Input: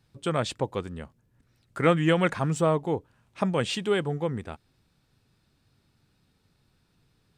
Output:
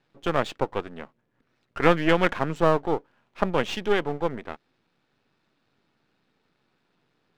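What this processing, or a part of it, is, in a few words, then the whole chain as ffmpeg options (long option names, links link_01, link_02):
crystal radio: -af "highpass=260,lowpass=3000,aeval=exprs='if(lt(val(0),0),0.251*val(0),val(0))':channel_layout=same,volume=6dB"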